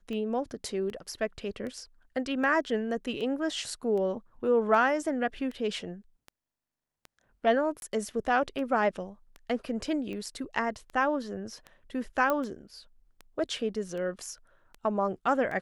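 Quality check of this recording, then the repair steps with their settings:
tick 78 rpm -28 dBFS
7.8–7.82 gap 21 ms
12.3 pop -15 dBFS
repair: de-click; interpolate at 7.8, 21 ms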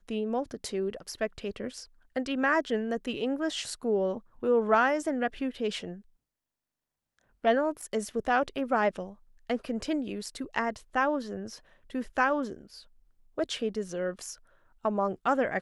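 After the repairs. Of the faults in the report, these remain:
none

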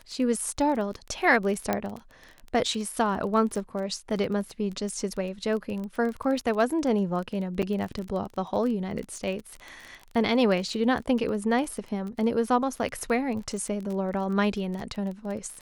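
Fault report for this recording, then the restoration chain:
crackle 25/s -32 dBFS
1.73 pop -11 dBFS
7.62–7.63 gap 7.4 ms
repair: de-click; interpolate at 7.62, 7.4 ms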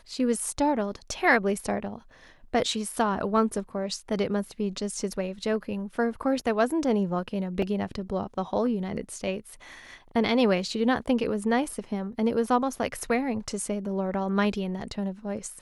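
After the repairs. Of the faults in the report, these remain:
none

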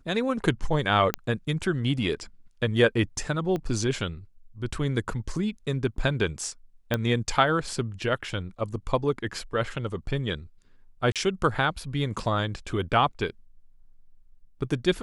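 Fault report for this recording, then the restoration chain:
1.14 pop -9 dBFS
3.56 pop -19 dBFS
6.94 pop -11 dBFS
11.12–11.16 gap 37 ms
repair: de-click; interpolate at 11.12, 37 ms

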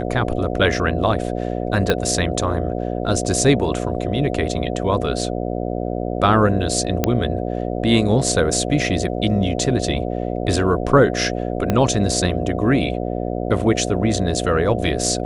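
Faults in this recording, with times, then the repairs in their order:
buzz 60 Hz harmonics 12 -24 dBFS
1.9 pop -4 dBFS
7.04 pop -3 dBFS
11.7 pop -6 dBFS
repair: de-click; de-hum 60 Hz, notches 12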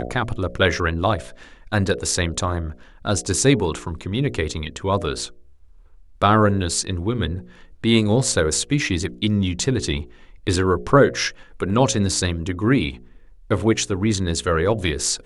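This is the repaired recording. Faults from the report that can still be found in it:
1.9 pop
11.7 pop

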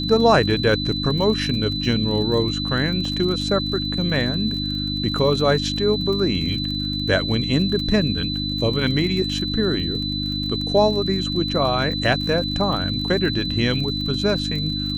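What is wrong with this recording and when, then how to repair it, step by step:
crackle 36/s -28 dBFS
hum 50 Hz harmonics 6 -27 dBFS
tone 4000 Hz -26 dBFS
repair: de-click; de-hum 50 Hz, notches 6; notch 4000 Hz, Q 30

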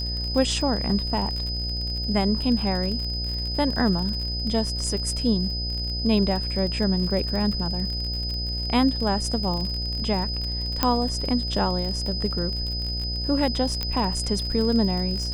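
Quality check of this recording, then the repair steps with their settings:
buzz 60 Hz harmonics 13 -30 dBFS
crackle 46/s -29 dBFS
tone 5000 Hz -29 dBFS
10.83 pop -5 dBFS
13.83 pop -12 dBFS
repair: de-click; de-hum 60 Hz, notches 13; notch 5000 Hz, Q 30

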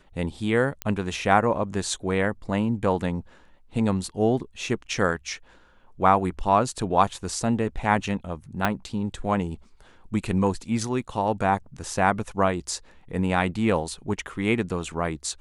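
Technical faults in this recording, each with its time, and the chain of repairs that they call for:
0.82 pop -12 dBFS
8.65 pop -8 dBFS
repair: de-click

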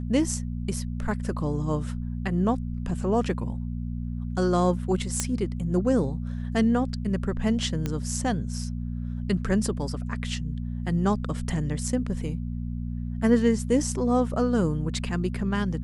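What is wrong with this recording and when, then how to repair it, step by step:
hum 60 Hz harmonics 4 -31 dBFS
5.2 pop -9 dBFS
7.86 pop -15 dBFS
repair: de-click; de-hum 60 Hz, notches 4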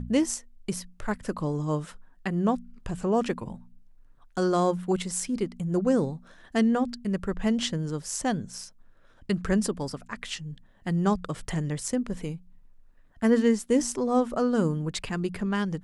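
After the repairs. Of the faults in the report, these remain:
none

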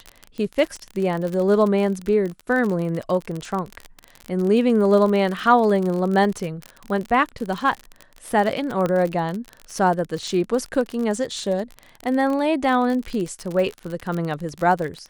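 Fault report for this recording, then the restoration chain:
crackle 42/s -25 dBFS
8.86 pop -12 dBFS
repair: de-click

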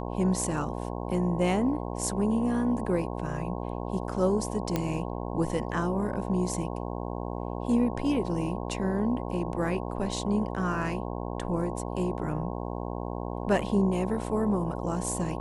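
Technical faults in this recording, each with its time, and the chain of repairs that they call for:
buzz 60 Hz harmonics 18 -34 dBFS
4.76 pop -13 dBFS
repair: de-click; de-hum 60 Hz, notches 18

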